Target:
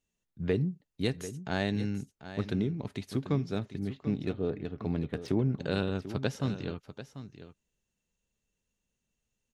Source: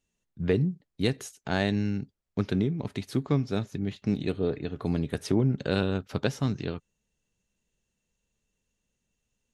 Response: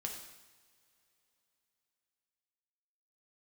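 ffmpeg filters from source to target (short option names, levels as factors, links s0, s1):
-filter_complex "[0:a]asettb=1/sr,asplit=3[s0][s1][s2];[s0]atrim=end=3.584[s3];[s1]atrim=start=3.58:end=5.28,asetpts=PTS-STARTPTS,afade=t=in:d=0.004:c=qsin,afade=t=out:st=1.696:d=0.004:c=qsin,adynamicsmooth=sensitivity=4:basefreq=3100[s4];[s2]atrim=start=5.276[s5];[s3][s4]acrossfade=d=0.004:c1=hsin:c2=qsin[s6];[s6][s5]acrossfade=d=0.004:c1=qsin:c2=hsin,aecho=1:1:741:0.237,volume=0.631"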